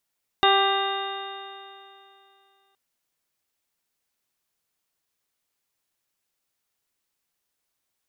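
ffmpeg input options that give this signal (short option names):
-f lavfi -i "aevalsrc='0.0794*pow(10,-3*t/2.71)*sin(2*PI*391.21*t)+0.119*pow(10,-3*t/2.71)*sin(2*PI*783.72*t)+0.0891*pow(10,-3*t/2.71)*sin(2*PI*1178.79*t)+0.0473*pow(10,-3*t/2.71)*sin(2*PI*1577.7*t)+0.0398*pow(10,-3*t/2.71)*sin(2*PI*1981.7*t)+0.00794*pow(10,-3*t/2.71)*sin(2*PI*2392*t)+0.0596*pow(10,-3*t/2.71)*sin(2*PI*2809.79*t)+0.0112*pow(10,-3*t/2.71)*sin(2*PI*3236.23*t)+0.0794*pow(10,-3*t/2.71)*sin(2*PI*3672.43*t)':d=2.32:s=44100"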